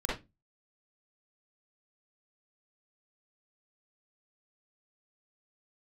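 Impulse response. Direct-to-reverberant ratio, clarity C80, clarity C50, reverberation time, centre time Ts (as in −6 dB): −5.5 dB, 12.5 dB, 0.5 dB, non-exponential decay, 45 ms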